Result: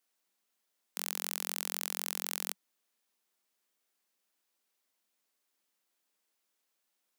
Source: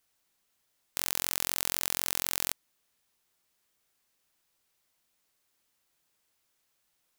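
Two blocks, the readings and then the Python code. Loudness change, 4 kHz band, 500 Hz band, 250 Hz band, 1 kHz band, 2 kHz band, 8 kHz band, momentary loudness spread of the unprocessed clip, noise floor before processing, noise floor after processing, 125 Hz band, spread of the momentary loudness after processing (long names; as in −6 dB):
−5.5 dB, −5.5 dB, −4.5 dB, −5.5 dB, −5.0 dB, −5.5 dB, −5.5 dB, 5 LU, −76 dBFS, −82 dBFS, −16.5 dB, 5 LU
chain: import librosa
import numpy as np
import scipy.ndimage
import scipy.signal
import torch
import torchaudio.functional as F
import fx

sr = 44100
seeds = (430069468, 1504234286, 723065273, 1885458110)

y = scipy.signal.sosfilt(scipy.signal.ellip(4, 1.0, 40, 190.0, 'highpass', fs=sr, output='sos'), x)
y = y * librosa.db_to_amplitude(-4.5)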